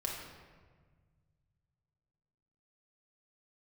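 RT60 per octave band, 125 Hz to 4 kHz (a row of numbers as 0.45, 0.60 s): 3.3, 2.2, 1.6, 1.4, 1.3, 0.95 s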